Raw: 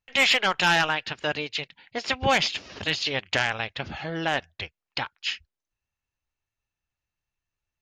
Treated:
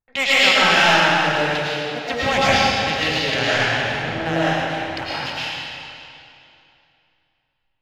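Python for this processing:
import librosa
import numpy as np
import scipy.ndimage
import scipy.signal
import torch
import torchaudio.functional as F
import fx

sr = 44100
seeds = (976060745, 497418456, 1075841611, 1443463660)

y = fx.wiener(x, sr, points=15)
y = fx.rev_freeverb(y, sr, rt60_s=2.7, hf_ratio=0.9, predelay_ms=70, drr_db=-9.5)
y = y * 10.0 ** (-1.0 / 20.0)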